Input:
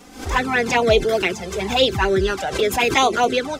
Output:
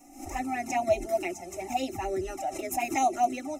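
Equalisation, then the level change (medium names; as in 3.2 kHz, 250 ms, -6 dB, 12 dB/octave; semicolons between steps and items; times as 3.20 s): Butterworth band-stop 4.6 kHz, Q 4.9; static phaser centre 310 Hz, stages 8; static phaser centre 690 Hz, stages 8; -4.5 dB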